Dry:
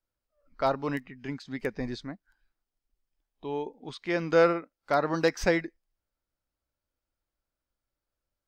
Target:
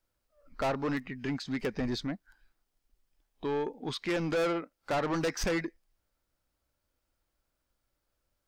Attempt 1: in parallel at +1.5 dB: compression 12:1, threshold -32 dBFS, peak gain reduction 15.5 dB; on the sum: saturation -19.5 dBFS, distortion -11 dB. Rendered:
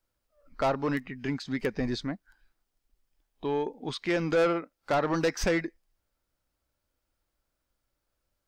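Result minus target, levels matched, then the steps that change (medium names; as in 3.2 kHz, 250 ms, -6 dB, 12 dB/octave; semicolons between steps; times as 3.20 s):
saturation: distortion -5 dB
change: saturation -26 dBFS, distortion -6 dB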